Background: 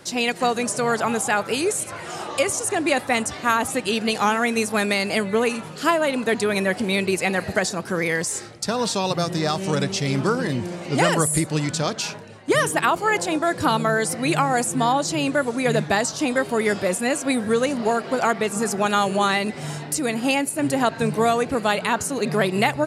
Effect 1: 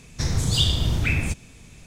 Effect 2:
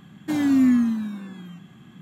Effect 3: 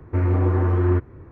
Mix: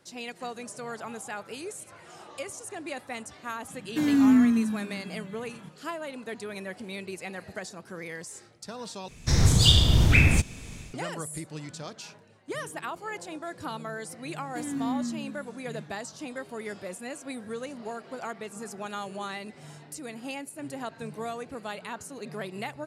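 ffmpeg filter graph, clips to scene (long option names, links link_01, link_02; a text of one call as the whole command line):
ffmpeg -i bed.wav -i cue0.wav -i cue1.wav -filter_complex "[2:a]asplit=2[link_01][link_02];[0:a]volume=-16dB[link_03];[link_01]equalizer=frequency=780:width=3.9:gain=-6.5[link_04];[1:a]dynaudnorm=framelen=170:gausssize=3:maxgain=8.5dB[link_05];[link_03]asplit=2[link_06][link_07];[link_06]atrim=end=9.084[link_08];[link_05]atrim=end=1.86,asetpts=PTS-STARTPTS,volume=-2.5dB[link_09];[link_07]atrim=start=10.936[link_10];[link_04]atrim=end=2.01,asetpts=PTS-STARTPTS,volume=-1.5dB,afade=type=in:duration=0.004:curve=hsin,afade=type=out:start_time=2.006:duration=0.004:curve=hsin,adelay=3680[link_11];[link_02]atrim=end=2.01,asetpts=PTS-STARTPTS,volume=-13dB,afade=type=in:duration=0.004:curve=hsin,afade=type=out:start_time=2.006:duration=0.004:curve=hsin,adelay=14270[link_12];[link_08][link_09]acrossfade=duration=0.004:curve1=hsin:curve2=hsin[link_13];[link_13][link_10]acrossfade=duration=0.004:curve1=hsin:curve2=hsin[link_14];[link_14][link_11][link_12]amix=inputs=3:normalize=0" out.wav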